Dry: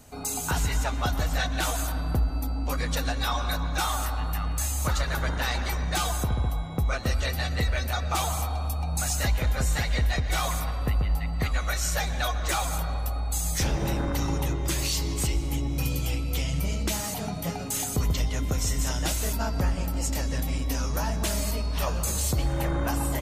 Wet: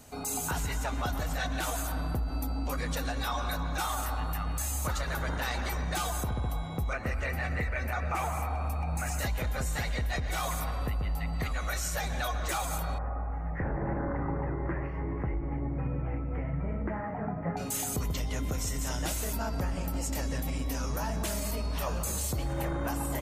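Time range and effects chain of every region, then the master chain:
0:06.93–0:09.19: high shelf with overshoot 2,800 Hz −6.5 dB, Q 3 + highs frequency-modulated by the lows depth 0.1 ms
0:12.98–0:17.57: elliptic low-pass filter 1,900 Hz, stop band 50 dB + double-tracking delay 23 ms −14 dB
whole clip: dynamic equaliser 4,300 Hz, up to −4 dB, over −47 dBFS, Q 0.77; brickwall limiter −22 dBFS; low-shelf EQ 110 Hz −4.5 dB

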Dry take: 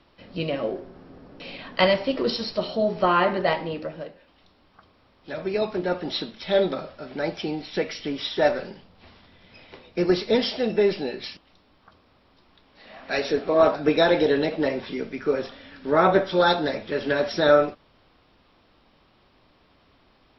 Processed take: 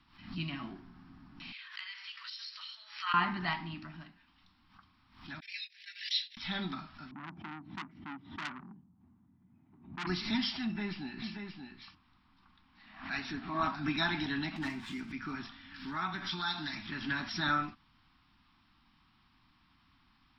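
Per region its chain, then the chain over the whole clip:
0:01.52–0:03.14: high-pass filter 1,500 Hz 24 dB per octave + downward compressor 12 to 1, threshold −33 dBFS
0:05.40–0:06.37: Butterworth high-pass 1,800 Hz 72 dB per octave + noise gate −45 dBFS, range −23 dB + high-shelf EQ 2,600 Hz +6 dB
0:07.11–0:10.07: flat-topped band-pass 230 Hz, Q 0.59 + saturating transformer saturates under 2,800 Hz
0:10.64–0:13.62: high-shelf EQ 3,800 Hz −8.5 dB + single-tap delay 579 ms −6.5 dB
0:14.56–0:15.12: mains-hum notches 60/120/180/240/300/360/420/480/540 Hz + windowed peak hold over 3 samples
0:15.74–0:16.87: high-shelf EQ 2,400 Hz +10.5 dB + downward compressor 3 to 1, threshold −25 dBFS
whole clip: Chebyshev band-stop filter 250–1,000 Hz, order 2; background raised ahead of every attack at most 110 dB per second; level −6 dB

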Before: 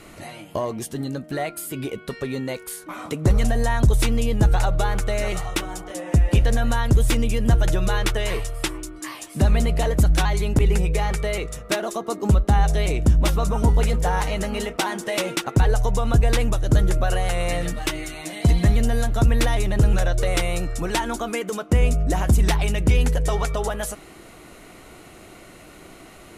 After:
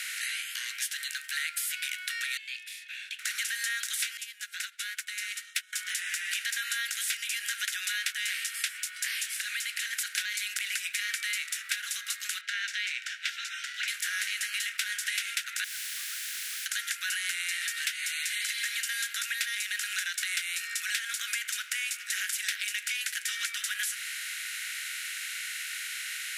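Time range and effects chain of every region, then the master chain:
0:02.37–0:03.19: formant filter i + frequency shifter +330 Hz
0:04.17–0:05.73: high-pass filter 1,300 Hz 24 dB per octave + expander for the loud parts 2.5 to 1, over −44 dBFS
0:09.27–0:09.93: high-pass filter 150 Hz + downward compressor 3 to 1, threshold −30 dBFS + one half of a high-frequency compander decoder only
0:12.41–0:13.88: Chebyshev high-pass filter 1,300 Hz, order 10 + high-frequency loss of the air 190 metres
0:15.64–0:16.66: three sine waves on the formant tracks + Butterworth low-pass 750 Hz + bit-depth reduction 8 bits, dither triangular
whole clip: compressor on every frequency bin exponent 0.6; Butterworth high-pass 1,500 Hz 72 dB per octave; downward compressor 6 to 1, threshold −30 dBFS; level +1.5 dB

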